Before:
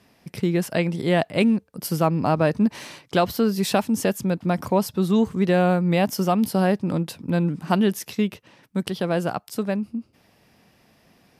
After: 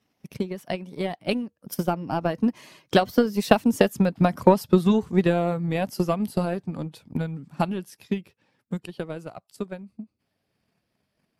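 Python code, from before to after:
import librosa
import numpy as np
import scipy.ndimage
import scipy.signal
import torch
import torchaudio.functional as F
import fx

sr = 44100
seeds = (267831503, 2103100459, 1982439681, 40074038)

y = fx.spec_quant(x, sr, step_db=15)
y = fx.doppler_pass(y, sr, speed_mps=24, closest_m=29.0, pass_at_s=4.38)
y = fx.transient(y, sr, attack_db=12, sustain_db=-1)
y = y * 10.0 ** (-3.0 / 20.0)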